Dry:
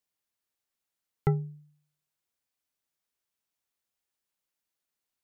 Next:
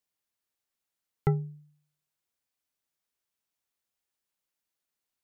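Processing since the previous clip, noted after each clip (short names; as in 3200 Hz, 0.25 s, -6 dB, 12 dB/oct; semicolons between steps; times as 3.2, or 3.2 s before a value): nothing audible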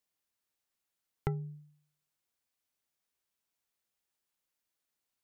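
compressor 4:1, threshold -31 dBFS, peak gain reduction 9.5 dB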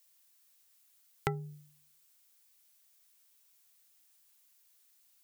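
tilt +3.5 dB/oct; gain +7 dB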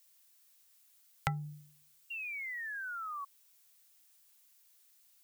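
Chebyshev band-stop 180–540 Hz, order 3; painted sound fall, 2.1–3.25, 1100–2800 Hz -42 dBFS; gain +1.5 dB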